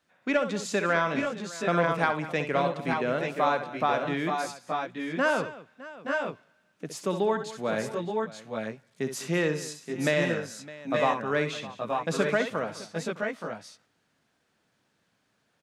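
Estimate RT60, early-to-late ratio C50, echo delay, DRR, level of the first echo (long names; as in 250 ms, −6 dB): no reverb audible, no reverb audible, 65 ms, no reverb audible, −9.0 dB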